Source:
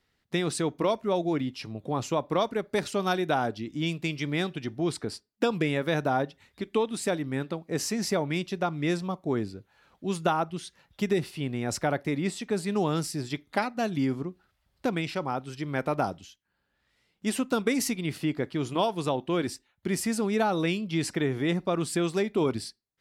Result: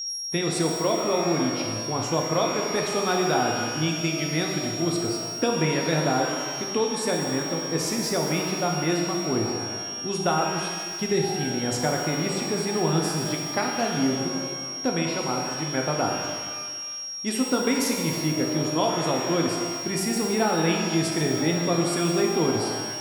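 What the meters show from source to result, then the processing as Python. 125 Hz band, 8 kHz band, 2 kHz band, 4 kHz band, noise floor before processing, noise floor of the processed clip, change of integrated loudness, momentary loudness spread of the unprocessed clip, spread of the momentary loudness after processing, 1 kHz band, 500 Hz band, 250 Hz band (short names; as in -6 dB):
+3.5 dB, +8.0 dB, +4.0 dB, +10.5 dB, -75 dBFS, -33 dBFS, +4.5 dB, 7 LU, 5 LU, +4.0 dB, +3.5 dB, +3.5 dB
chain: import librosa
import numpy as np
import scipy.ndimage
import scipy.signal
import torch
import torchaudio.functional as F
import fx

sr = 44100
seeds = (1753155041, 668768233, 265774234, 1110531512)

y = x + 10.0 ** (-31.0 / 20.0) * np.sin(2.0 * np.pi * 5600.0 * np.arange(len(x)) / sr)
y = fx.rev_shimmer(y, sr, seeds[0], rt60_s=1.7, semitones=12, shimmer_db=-8, drr_db=0.5)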